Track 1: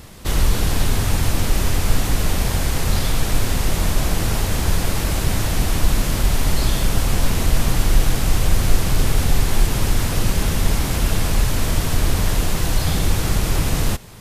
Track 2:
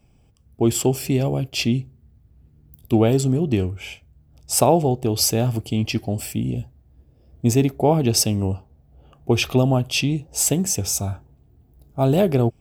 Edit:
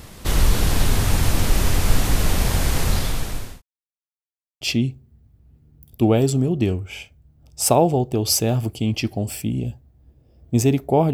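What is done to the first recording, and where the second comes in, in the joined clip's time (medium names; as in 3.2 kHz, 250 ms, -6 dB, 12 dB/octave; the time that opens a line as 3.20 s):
track 1
2.81–3.62 s: fade out linear
3.62–4.61 s: mute
4.61 s: go over to track 2 from 1.52 s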